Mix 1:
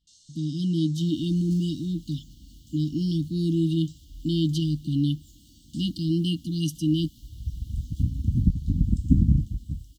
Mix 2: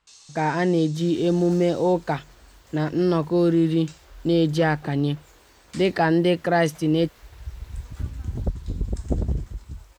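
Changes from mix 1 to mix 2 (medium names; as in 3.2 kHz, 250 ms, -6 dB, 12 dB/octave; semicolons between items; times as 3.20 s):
first sound +7.5 dB; second sound: add peaking EQ 170 Hz -10 dB 2.1 oct; master: remove brick-wall FIR band-stop 330–2800 Hz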